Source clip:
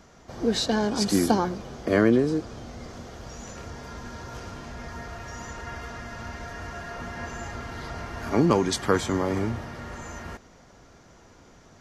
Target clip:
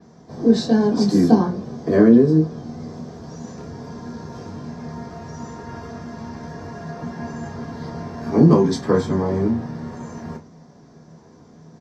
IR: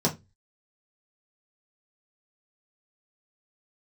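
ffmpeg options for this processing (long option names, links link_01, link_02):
-filter_complex "[0:a]bandreject=frequency=5700:width=23,asplit=2[link_01][link_02];[link_02]adelay=26,volume=-11dB[link_03];[link_01][link_03]amix=inputs=2:normalize=0[link_04];[1:a]atrim=start_sample=2205[link_05];[link_04][link_05]afir=irnorm=-1:irlink=0,adynamicequalizer=threshold=0.02:dfrequency=5400:dqfactor=0.7:tfrequency=5400:tqfactor=0.7:attack=5:release=100:ratio=0.375:range=2.5:mode=cutabove:tftype=highshelf,volume=-12dB"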